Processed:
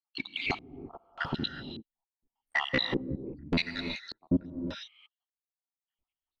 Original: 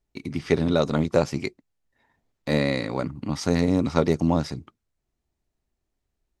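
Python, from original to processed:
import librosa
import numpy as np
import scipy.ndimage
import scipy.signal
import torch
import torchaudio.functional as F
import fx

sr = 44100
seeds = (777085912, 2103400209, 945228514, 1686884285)

y = fx.spec_dropout(x, sr, seeds[0], share_pct=85)
y = fx.graphic_eq(y, sr, hz=(125, 500, 2000, 4000, 8000), db=(-4, -3, 4, 6, -7))
y = fx.leveller(y, sr, passes=2)
y = 10.0 ** (-21.5 / 20.0) * np.tanh(y / 10.0 ** (-21.5 / 20.0))
y = fx.rev_gated(y, sr, seeds[1], gate_ms=390, shape='rising', drr_db=6.5)
y = fx.filter_lfo_lowpass(y, sr, shape='square', hz=0.85, low_hz=330.0, high_hz=3300.0, q=1.6)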